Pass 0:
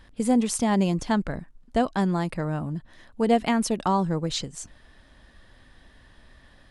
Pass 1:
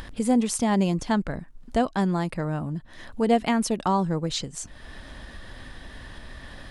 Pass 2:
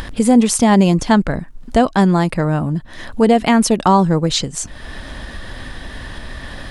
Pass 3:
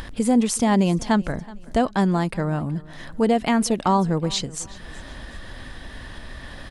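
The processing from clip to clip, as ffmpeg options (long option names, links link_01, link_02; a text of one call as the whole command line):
ffmpeg -i in.wav -af "acompressor=mode=upward:threshold=-28dB:ratio=2.5" out.wav
ffmpeg -i in.wav -af "alimiter=level_in=12dB:limit=-1dB:release=50:level=0:latency=1,volume=-1dB" out.wav
ffmpeg -i in.wav -af "aecho=1:1:374|748|1122:0.0841|0.0303|0.0109,volume=-7dB" out.wav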